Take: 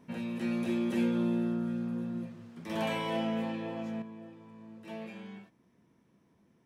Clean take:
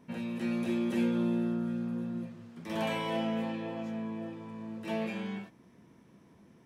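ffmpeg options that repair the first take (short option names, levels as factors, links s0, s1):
-af "asetnsamples=n=441:p=0,asendcmd='4.02 volume volume 8.5dB',volume=1"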